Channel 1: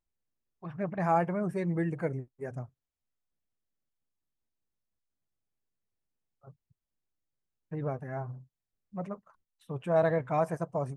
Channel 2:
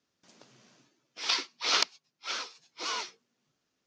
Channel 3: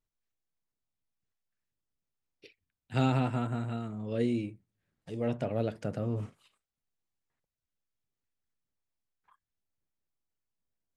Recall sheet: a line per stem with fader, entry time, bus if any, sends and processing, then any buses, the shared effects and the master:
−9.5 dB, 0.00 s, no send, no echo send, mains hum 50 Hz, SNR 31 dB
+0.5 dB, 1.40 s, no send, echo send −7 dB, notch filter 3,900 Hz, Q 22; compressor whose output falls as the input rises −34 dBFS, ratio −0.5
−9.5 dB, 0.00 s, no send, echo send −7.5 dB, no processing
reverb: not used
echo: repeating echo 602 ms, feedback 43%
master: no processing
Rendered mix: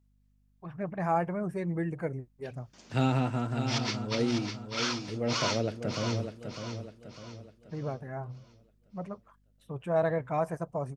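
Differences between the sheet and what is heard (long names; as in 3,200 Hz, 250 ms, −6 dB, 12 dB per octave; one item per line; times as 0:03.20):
stem 1 −9.5 dB → −1.5 dB
stem 2: entry 1.40 s → 2.50 s
stem 3 −9.5 dB → +0.5 dB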